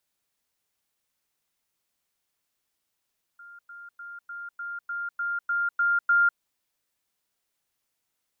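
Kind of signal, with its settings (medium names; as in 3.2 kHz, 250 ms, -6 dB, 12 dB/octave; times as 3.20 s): level ladder 1.4 kHz -44 dBFS, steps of 3 dB, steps 10, 0.20 s 0.10 s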